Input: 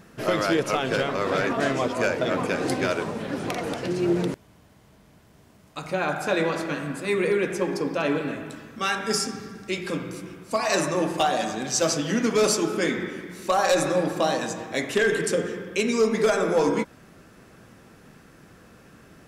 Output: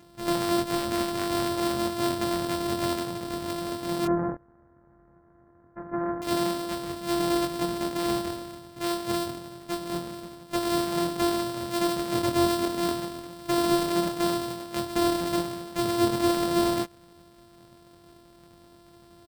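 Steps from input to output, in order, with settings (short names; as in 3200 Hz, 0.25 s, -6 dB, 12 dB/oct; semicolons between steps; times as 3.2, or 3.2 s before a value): sample sorter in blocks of 128 samples; 4.05–6.22 steep low-pass 1800 Hz 48 dB/oct; doubler 23 ms -4 dB; gain -5.5 dB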